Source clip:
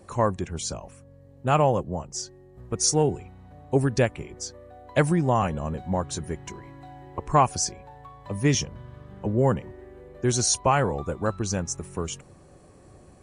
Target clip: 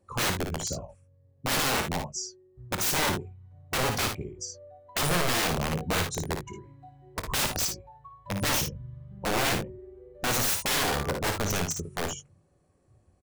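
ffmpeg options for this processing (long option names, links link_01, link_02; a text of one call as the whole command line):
ffmpeg -i in.wav -af "afftdn=noise_reduction=18:noise_floor=-33,aeval=exprs='(mod(12.6*val(0)+1,2)-1)/12.6':channel_layout=same,aecho=1:1:24|56|75:0.178|0.501|0.237" out.wav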